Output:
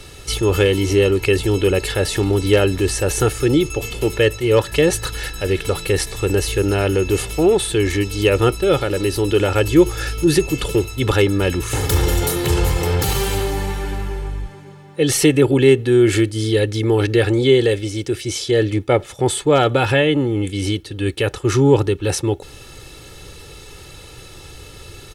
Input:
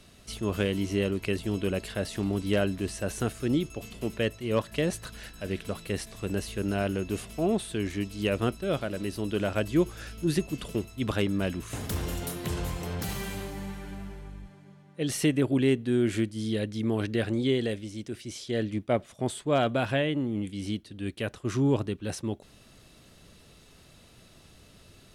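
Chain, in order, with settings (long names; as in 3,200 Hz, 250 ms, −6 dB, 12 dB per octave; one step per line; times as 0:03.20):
in parallel at 0 dB: brickwall limiter −26.5 dBFS, peak gain reduction 12 dB
on the sum: comb filter 2.3 ms, depth 76%
level +8 dB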